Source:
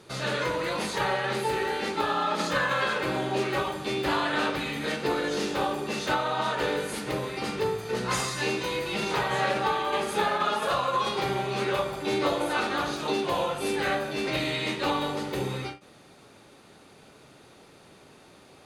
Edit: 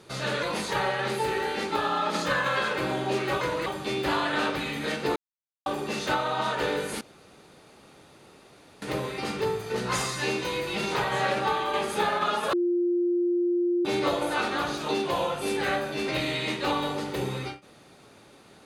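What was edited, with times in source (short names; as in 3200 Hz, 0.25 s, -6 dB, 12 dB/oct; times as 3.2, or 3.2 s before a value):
0.43–0.68 move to 3.66
5.16–5.66 mute
7.01 insert room tone 1.81 s
10.72–12.04 bleep 350 Hz -21.5 dBFS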